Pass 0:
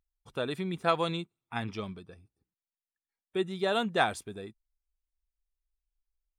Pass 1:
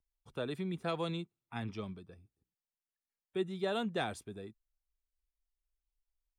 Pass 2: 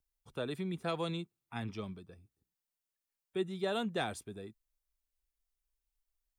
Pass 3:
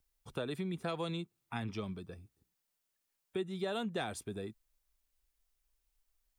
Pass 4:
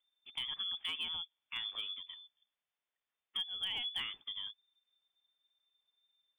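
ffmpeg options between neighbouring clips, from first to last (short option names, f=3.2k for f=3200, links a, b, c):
-filter_complex "[0:a]lowshelf=f=480:g=5,acrossover=split=360|520|1900[a][b][c][d];[c]alimiter=level_in=2dB:limit=-24dB:level=0:latency=1,volume=-2dB[e];[a][b][e][d]amix=inputs=4:normalize=0,volume=-7.5dB"
-af "highshelf=f=7.4k:g=5.5"
-af "acompressor=threshold=-44dB:ratio=2.5,volume=6.5dB"
-af "lowpass=f=3.1k:t=q:w=0.5098,lowpass=f=3.1k:t=q:w=0.6013,lowpass=f=3.1k:t=q:w=0.9,lowpass=f=3.1k:t=q:w=2.563,afreqshift=-3600,volume=29dB,asoftclip=hard,volume=-29dB,volume=-2dB"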